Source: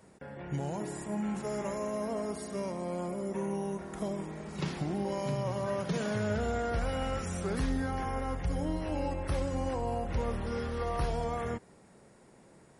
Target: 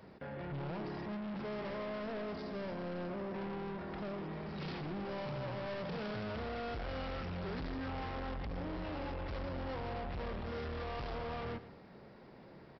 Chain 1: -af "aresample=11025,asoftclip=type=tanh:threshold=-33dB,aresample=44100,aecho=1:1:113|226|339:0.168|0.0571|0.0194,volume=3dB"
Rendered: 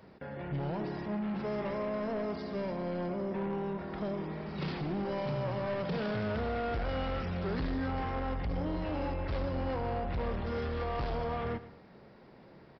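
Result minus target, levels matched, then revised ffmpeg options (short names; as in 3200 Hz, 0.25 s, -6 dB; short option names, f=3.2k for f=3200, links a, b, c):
soft clip: distortion -5 dB
-af "aresample=11025,asoftclip=type=tanh:threshold=-42dB,aresample=44100,aecho=1:1:113|226|339:0.168|0.0571|0.0194,volume=3dB"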